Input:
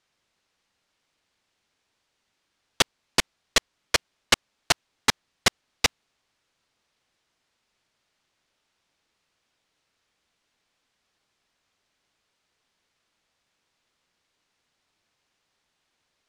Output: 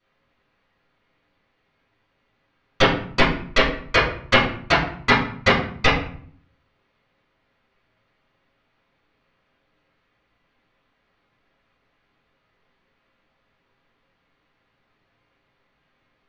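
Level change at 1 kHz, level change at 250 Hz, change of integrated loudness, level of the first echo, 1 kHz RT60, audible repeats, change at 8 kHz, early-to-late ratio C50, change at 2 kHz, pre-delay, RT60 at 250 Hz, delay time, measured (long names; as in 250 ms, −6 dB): +9.5 dB, +12.5 dB, +5.5 dB, no echo audible, 0.55 s, no echo audible, −12.5 dB, 5.0 dB, +8.0 dB, 4 ms, 0.80 s, no echo audible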